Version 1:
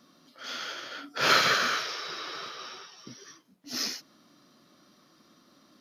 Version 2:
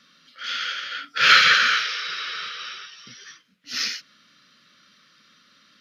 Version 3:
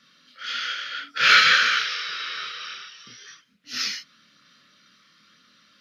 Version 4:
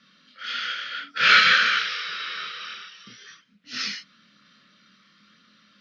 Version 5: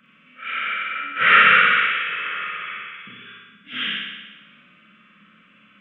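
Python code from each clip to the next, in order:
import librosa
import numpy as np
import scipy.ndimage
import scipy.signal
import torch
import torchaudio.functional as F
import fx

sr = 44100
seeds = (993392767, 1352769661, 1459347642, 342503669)

y1 = fx.curve_eq(x, sr, hz=(210.0, 340.0, 490.0, 820.0, 1400.0, 2900.0, 12000.0), db=(0, -10, 0, -13, 11, 14, -4))
y1 = F.gain(torch.from_numpy(y1), -2.0).numpy()
y2 = fx.chorus_voices(y1, sr, voices=2, hz=0.55, base_ms=26, depth_ms=2.7, mix_pct=45)
y2 = F.gain(torch.from_numpy(y2), 2.0).numpy()
y3 = scipy.signal.sosfilt(scipy.signal.butter(2, 4900.0, 'lowpass', fs=sr, output='sos'), y2)
y3 = fx.peak_eq(y3, sr, hz=200.0, db=9.0, octaves=0.27)
y4 = fx.freq_compress(y3, sr, knee_hz=1200.0, ratio=1.5)
y4 = fx.room_flutter(y4, sr, wall_m=10.3, rt60_s=1.2)
y4 = F.gain(torch.from_numpy(y4), 3.0).numpy()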